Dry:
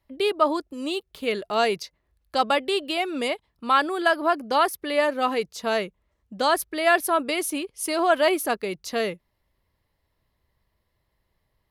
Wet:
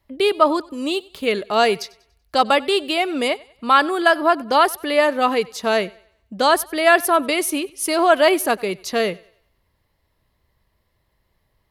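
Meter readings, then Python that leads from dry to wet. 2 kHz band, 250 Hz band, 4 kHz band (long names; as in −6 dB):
+5.5 dB, +5.5 dB, +5.5 dB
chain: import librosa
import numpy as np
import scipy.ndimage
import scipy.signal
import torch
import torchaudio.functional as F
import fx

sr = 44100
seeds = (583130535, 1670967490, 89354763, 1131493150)

y = fx.echo_thinned(x, sr, ms=95, feedback_pct=40, hz=300.0, wet_db=-22.5)
y = fx.wow_flutter(y, sr, seeds[0], rate_hz=2.1, depth_cents=16.0)
y = y * librosa.db_to_amplitude(5.5)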